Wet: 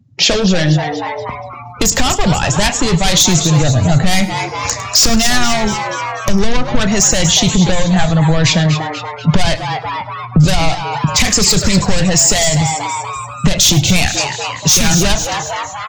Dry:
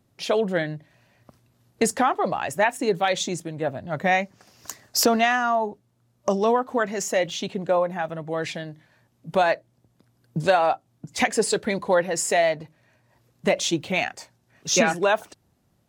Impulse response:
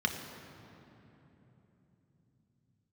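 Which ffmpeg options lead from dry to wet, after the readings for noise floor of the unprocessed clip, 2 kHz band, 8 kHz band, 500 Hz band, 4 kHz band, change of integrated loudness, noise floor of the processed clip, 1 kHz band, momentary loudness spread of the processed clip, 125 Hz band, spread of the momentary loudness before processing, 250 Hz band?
-67 dBFS, +8.0 dB, +17.5 dB, +3.0 dB, +17.0 dB, +10.5 dB, -29 dBFS, +6.0 dB, 10 LU, +22.0 dB, 12 LU, +14.0 dB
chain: -filter_complex "[0:a]highshelf=f=5.1k:g=5.5,aresample=16000,aresample=44100,asplit=2[a][b];[b]adelay=33,volume=-14dB[c];[a][c]amix=inputs=2:normalize=0,asoftclip=type=hard:threshold=-23.5dB,asplit=2[d][e];[e]asplit=6[f][g][h][i][j][k];[f]adelay=240,afreqshift=140,volume=-11dB[l];[g]adelay=480,afreqshift=280,volume=-16dB[m];[h]adelay=720,afreqshift=420,volume=-21.1dB[n];[i]adelay=960,afreqshift=560,volume=-26.1dB[o];[j]adelay=1200,afreqshift=700,volume=-31.1dB[p];[k]adelay=1440,afreqshift=840,volume=-36.2dB[q];[l][m][n][o][p][q]amix=inputs=6:normalize=0[r];[d][r]amix=inputs=2:normalize=0,acrossover=split=200|3000[s][t][u];[t]acompressor=threshold=-37dB:ratio=6[v];[s][v][u]amix=inputs=3:normalize=0,afftdn=nr=28:nf=-53,asplit=2[w][x];[x]aecho=0:1:104:0.126[y];[w][y]amix=inputs=2:normalize=0,asubboost=boost=5.5:cutoff=130,alimiter=level_in=22.5dB:limit=-1dB:release=50:level=0:latency=1,volume=-1dB"

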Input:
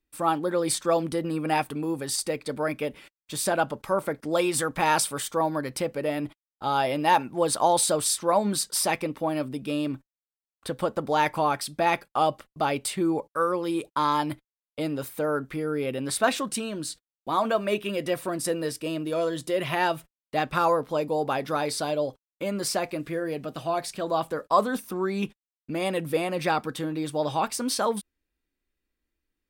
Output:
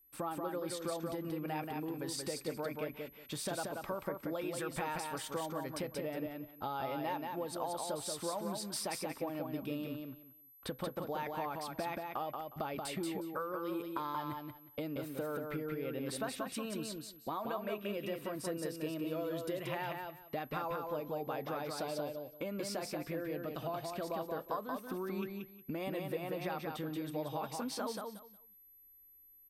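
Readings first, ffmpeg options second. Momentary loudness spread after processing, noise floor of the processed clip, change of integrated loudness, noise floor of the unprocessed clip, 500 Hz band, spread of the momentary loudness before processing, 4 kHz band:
5 LU, -61 dBFS, -13.0 dB, under -85 dBFS, -12.0 dB, 9 LU, -12.5 dB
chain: -af "aemphasis=mode=reproduction:type=cd,acompressor=threshold=-35dB:ratio=6,aeval=exprs='val(0)+0.000891*sin(2*PI*12000*n/s)':c=same,aecho=1:1:181|362|543:0.631|0.126|0.0252,volume=-2.5dB"

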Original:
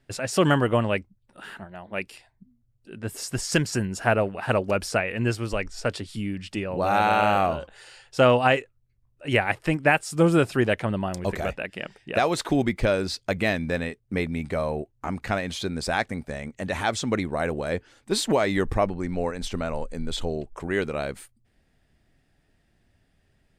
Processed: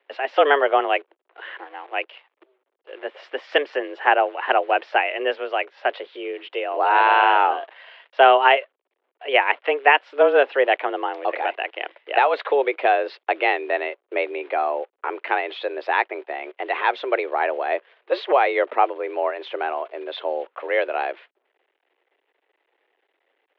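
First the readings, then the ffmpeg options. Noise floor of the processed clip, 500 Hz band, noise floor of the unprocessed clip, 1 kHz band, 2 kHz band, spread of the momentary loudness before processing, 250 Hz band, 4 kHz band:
-76 dBFS, +4.0 dB, -68 dBFS, +8.0 dB, +5.5 dB, 13 LU, -9.0 dB, +2.5 dB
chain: -af "acrusher=bits=9:dc=4:mix=0:aa=0.000001,highpass=f=260:t=q:w=0.5412,highpass=f=260:t=q:w=1.307,lowpass=f=3.1k:t=q:w=0.5176,lowpass=f=3.1k:t=q:w=0.7071,lowpass=f=3.1k:t=q:w=1.932,afreqshift=140,volume=5dB"

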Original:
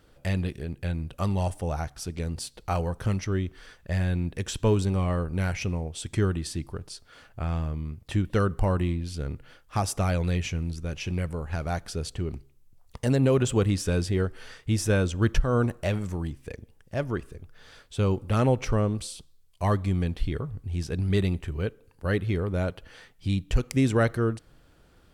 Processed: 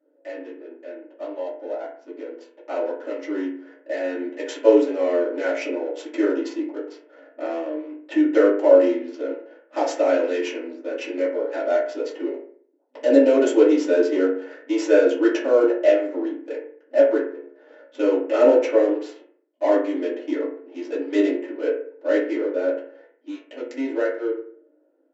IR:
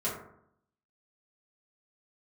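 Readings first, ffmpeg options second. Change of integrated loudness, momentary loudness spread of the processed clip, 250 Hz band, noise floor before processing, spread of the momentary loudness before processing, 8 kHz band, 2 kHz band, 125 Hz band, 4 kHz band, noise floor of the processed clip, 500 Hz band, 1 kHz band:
+6.5 dB, 19 LU, +6.0 dB, -58 dBFS, 12 LU, n/a, +4.0 dB, under -40 dB, -1.5 dB, -61 dBFS, +11.5 dB, +2.0 dB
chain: -filter_complex "[0:a]dynaudnorm=f=200:g=31:m=11.5dB,equalizer=f=500:t=o:w=1:g=7,equalizer=f=1k:t=o:w=1:g=-9,equalizer=f=4k:t=o:w=1:g=-4,adynamicsmooth=sensitivity=5:basefreq=830[a];[1:a]atrim=start_sample=2205,asetrate=61740,aresample=44100[b];[a][b]afir=irnorm=-1:irlink=0,afftfilt=real='re*between(b*sr/4096,250,7700)':imag='im*between(b*sr/4096,250,7700)':win_size=4096:overlap=0.75,volume=-6dB"

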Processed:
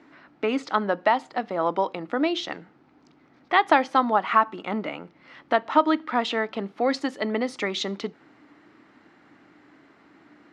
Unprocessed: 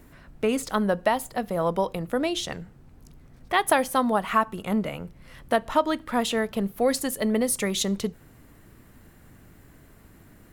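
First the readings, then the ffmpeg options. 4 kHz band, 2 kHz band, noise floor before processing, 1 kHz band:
0.0 dB, +2.5 dB, -53 dBFS, +3.5 dB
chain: -af "highpass=290,equalizer=f=300:t=q:w=4:g=9,equalizer=f=490:t=q:w=4:g=-3,equalizer=f=840:t=q:w=4:g=5,equalizer=f=1.3k:t=q:w=4:g=5,equalizer=f=2.1k:t=q:w=4:g=4,lowpass=f=5k:w=0.5412,lowpass=f=5k:w=1.3066"

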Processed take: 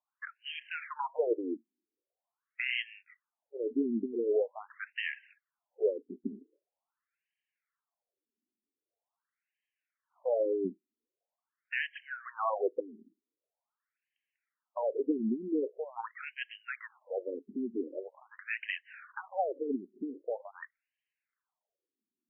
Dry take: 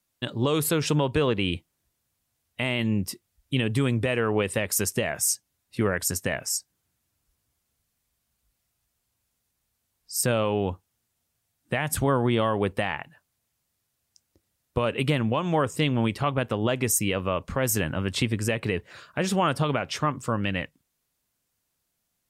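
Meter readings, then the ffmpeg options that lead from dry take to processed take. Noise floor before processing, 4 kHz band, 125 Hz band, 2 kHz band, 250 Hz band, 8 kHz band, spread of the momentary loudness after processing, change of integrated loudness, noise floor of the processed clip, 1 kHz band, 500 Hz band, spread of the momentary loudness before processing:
-78 dBFS, -14.0 dB, under -30 dB, -8.0 dB, -9.5 dB, under -40 dB, 13 LU, -9.5 dB, under -85 dBFS, -10.5 dB, -6.5 dB, 8 LU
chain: -af "aphaser=in_gain=1:out_gain=1:delay=5:decay=0.4:speed=1.5:type=triangular,afftfilt=real='re*between(b*sr/1024,280*pow(2300/280,0.5+0.5*sin(2*PI*0.44*pts/sr))/1.41,280*pow(2300/280,0.5+0.5*sin(2*PI*0.44*pts/sr))*1.41)':imag='im*between(b*sr/1024,280*pow(2300/280,0.5+0.5*sin(2*PI*0.44*pts/sr))/1.41,280*pow(2300/280,0.5+0.5*sin(2*PI*0.44*pts/sr))*1.41)':win_size=1024:overlap=0.75,volume=-3dB"

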